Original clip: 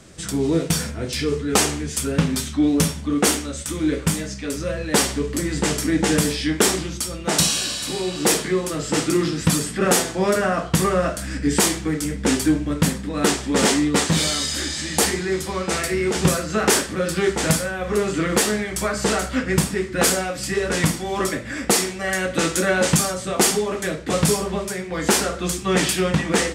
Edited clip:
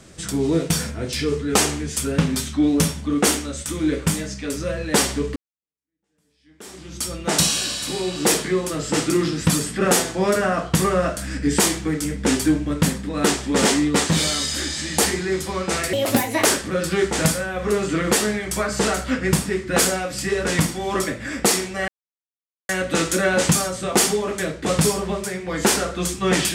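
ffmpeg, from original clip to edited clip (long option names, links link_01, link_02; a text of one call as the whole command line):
ffmpeg -i in.wav -filter_complex "[0:a]asplit=5[link_01][link_02][link_03][link_04][link_05];[link_01]atrim=end=5.36,asetpts=PTS-STARTPTS,afade=type=out:start_time=5.356:duration=0.004:curve=hsin[link_06];[link_02]atrim=start=5.36:end=15.934,asetpts=PTS-STARTPTS,afade=type=in:duration=1.67:curve=exp[link_07];[link_03]atrim=start=15.93:end=16.7,asetpts=PTS-STARTPTS,asetrate=65268,aresample=44100[link_08];[link_04]atrim=start=16.696:end=22.13,asetpts=PTS-STARTPTS,afade=type=out:start_time=5.43:duration=0.004:curve=hsin,apad=pad_dur=0.81[link_09];[link_05]atrim=start=22.13,asetpts=PTS-STARTPTS,afade=type=in:duration=0.004:curve=hsin[link_10];[link_06][link_07]concat=n=2:v=0:a=1[link_11];[link_11][link_08]acrossfade=duration=0.004:curve1=hsin:curve2=hsin[link_12];[link_09][link_10]concat=n=2:v=0:a=1[link_13];[link_12][link_13]acrossfade=duration=0.004:curve1=hsin:curve2=hsin" out.wav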